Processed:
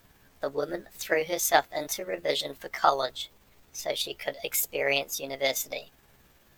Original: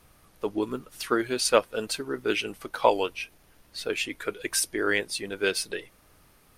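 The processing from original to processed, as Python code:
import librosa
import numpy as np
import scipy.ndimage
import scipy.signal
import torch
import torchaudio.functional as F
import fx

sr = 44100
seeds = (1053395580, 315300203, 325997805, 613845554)

y = fx.pitch_heads(x, sr, semitones=5.5)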